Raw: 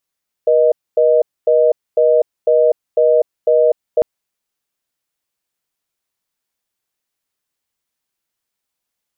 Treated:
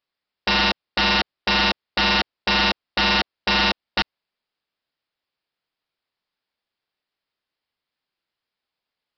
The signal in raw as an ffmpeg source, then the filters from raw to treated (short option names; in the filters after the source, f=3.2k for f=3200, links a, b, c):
-f lavfi -i "aevalsrc='0.266*(sin(2*PI*480*t)+sin(2*PI*620*t))*clip(min(mod(t,0.5),0.25-mod(t,0.5))/0.005,0,1)':d=3.55:s=44100"
-af "lowshelf=f=200:g=-4,aresample=11025,aeval=exprs='(mod(4.47*val(0)+1,2)-1)/4.47':c=same,aresample=44100"